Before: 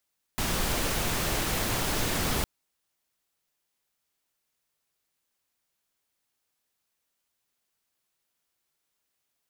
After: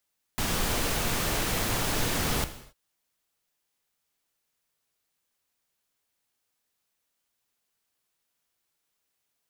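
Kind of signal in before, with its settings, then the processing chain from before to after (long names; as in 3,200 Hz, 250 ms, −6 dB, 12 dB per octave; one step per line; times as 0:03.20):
noise pink, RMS −28 dBFS 2.06 s
reverb whose tail is shaped and stops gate 300 ms falling, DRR 10 dB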